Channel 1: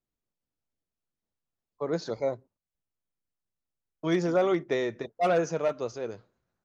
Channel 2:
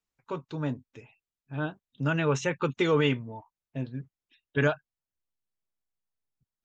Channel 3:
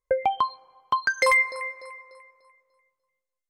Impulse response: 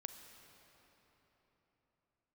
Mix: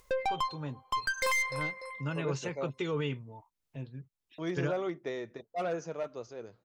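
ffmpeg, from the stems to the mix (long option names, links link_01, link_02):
-filter_complex "[0:a]adelay=350,volume=-9dB[link_01];[1:a]equalizer=frequency=250:width_type=o:width=0.67:gain=-6,equalizer=frequency=630:width_type=o:width=0.67:gain=-4,equalizer=frequency=1600:width_type=o:width=0.67:gain=-4,acrossover=split=470[link_02][link_03];[link_03]acompressor=threshold=-31dB:ratio=6[link_04];[link_02][link_04]amix=inputs=2:normalize=0,volume=-5.5dB[link_05];[2:a]aeval=exprs='(tanh(20*val(0)+0.3)-tanh(0.3))/20':channel_layout=same,volume=-1dB[link_06];[link_01][link_05][link_06]amix=inputs=3:normalize=0,acompressor=mode=upward:threshold=-45dB:ratio=2.5"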